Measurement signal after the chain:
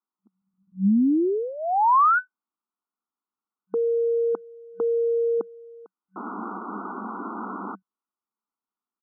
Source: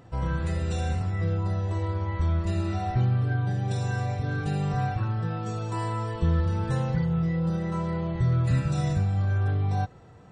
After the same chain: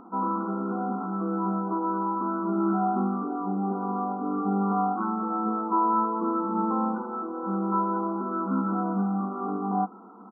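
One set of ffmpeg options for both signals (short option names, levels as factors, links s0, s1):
-af "afftfilt=real='re*between(b*sr/4096,190,1500)':imag='im*between(b*sr/4096,190,1500)':win_size=4096:overlap=0.75,aecho=1:1:0.9:0.8,volume=2.24"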